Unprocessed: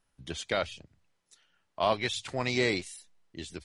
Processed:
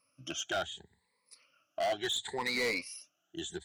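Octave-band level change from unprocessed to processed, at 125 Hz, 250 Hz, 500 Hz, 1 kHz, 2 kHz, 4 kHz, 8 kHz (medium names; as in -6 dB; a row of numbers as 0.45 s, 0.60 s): -13.0 dB, -6.5 dB, -4.5 dB, -4.5 dB, -2.0 dB, -0.5 dB, +1.5 dB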